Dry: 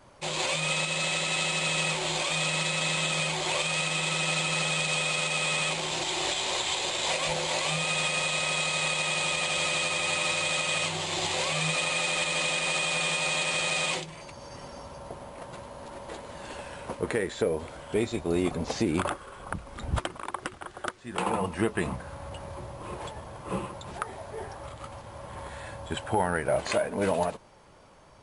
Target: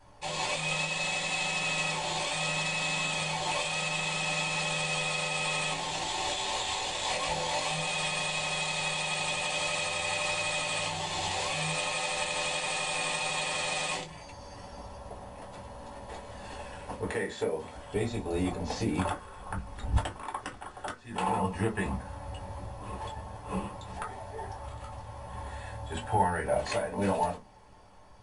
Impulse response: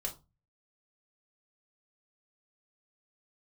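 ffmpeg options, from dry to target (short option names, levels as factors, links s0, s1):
-filter_complex "[0:a]asettb=1/sr,asplit=3[s0][s1][s2];[s0]atrim=end=17.084[s3];[s1]atrim=start=17.08:end=17.74,asetpts=PTS-STARTPTS,afade=t=in:d=0.004:c=qsin,afade=t=out:st=0.656:d=0.004:c=qsin,highpass=f=190:p=1[s4];[s2]atrim=start=17.736[s5];[s3][s4]acrossfade=d=0.004:c1=hsin:c2=qsin[s6];[s6][s5]acrossfade=d=0.004:c1=qsin:c2=hsin[s7];[1:a]atrim=start_sample=2205,asetrate=66150,aresample=44100[s8];[s7][s8]afir=irnorm=-1:irlink=0"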